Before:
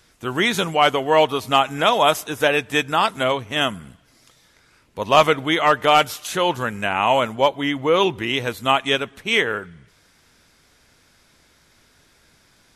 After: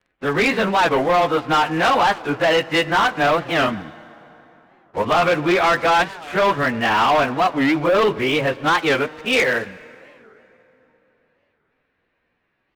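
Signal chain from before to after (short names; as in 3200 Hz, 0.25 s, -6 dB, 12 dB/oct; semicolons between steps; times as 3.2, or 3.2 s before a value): pitch shift by moving bins +2 st; LPF 2700 Hz 24 dB/oct; low shelf 180 Hz -6.5 dB; notches 60/120 Hz; in parallel at 0 dB: negative-ratio compressor -20 dBFS, ratio -0.5; on the sum: sample leveller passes 3; vibrato 0.33 Hz 5.9 cents; on a send at -19 dB: reverb RT60 3.7 s, pre-delay 33 ms; on the sum: record warp 45 rpm, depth 250 cents; gain -8 dB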